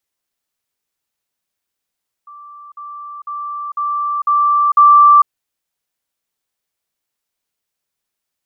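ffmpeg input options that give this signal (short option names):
-f lavfi -i "aevalsrc='pow(10,(-34+6*floor(t/0.5))/20)*sin(2*PI*1170*t)*clip(min(mod(t,0.5),0.45-mod(t,0.5))/0.005,0,1)':d=3:s=44100"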